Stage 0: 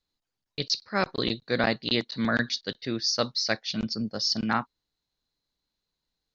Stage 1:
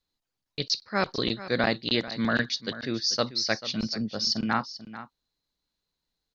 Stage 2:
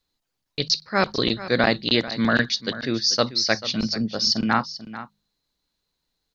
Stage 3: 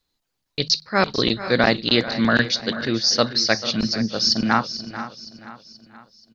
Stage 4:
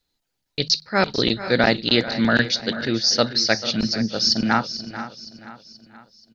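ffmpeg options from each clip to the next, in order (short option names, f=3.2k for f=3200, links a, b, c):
-af "aecho=1:1:440:0.188"
-af "bandreject=f=51.69:t=h:w=4,bandreject=f=103.38:t=h:w=4,bandreject=f=155.07:t=h:w=4,bandreject=f=206.76:t=h:w=4,volume=5.5dB"
-af "aecho=1:1:479|958|1437|1916:0.178|0.0854|0.041|0.0197,volume=2dB"
-af "bandreject=f=1.1k:w=6.5"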